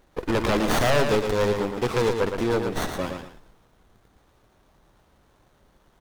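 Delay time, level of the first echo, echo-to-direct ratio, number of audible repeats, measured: 115 ms, −6.0 dB, −5.5 dB, 2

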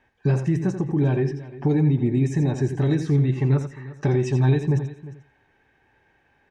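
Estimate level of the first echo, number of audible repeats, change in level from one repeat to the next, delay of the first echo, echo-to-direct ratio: −9.0 dB, 4, repeats not evenly spaced, 85 ms, −8.0 dB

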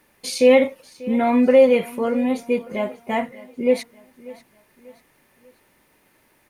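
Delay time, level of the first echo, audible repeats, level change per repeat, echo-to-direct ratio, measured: 591 ms, −20.0 dB, 3, −7.5 dB, −19.0 dB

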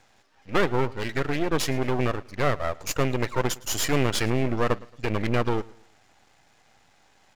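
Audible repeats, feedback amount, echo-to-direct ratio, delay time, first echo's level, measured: 2, 37%, −22.0 dB, 111 ms, −22.5 dB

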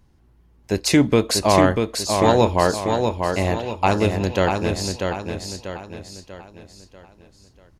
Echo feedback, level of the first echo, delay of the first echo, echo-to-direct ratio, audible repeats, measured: 43%, −5.0 dB, 641 ms, −4.0 dB, 5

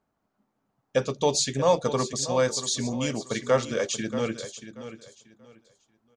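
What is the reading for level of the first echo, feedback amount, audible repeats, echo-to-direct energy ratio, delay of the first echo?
−12.0 dB, 23%, 2, −12.0 dB, 633 ms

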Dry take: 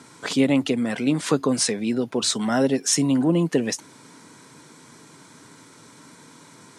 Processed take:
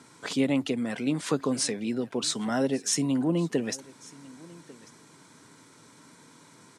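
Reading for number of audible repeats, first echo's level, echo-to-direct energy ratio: 1, −22.0 dB, −22.0 dB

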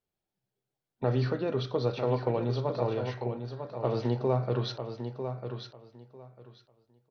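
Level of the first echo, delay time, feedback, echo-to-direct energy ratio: −8.0 dB, 948 ms, 19%, −8.0 dB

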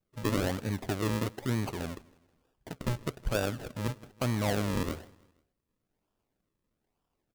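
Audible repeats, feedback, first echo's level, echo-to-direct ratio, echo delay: 2, 45%, −23.0 dB, −22.0 dB, 160 ms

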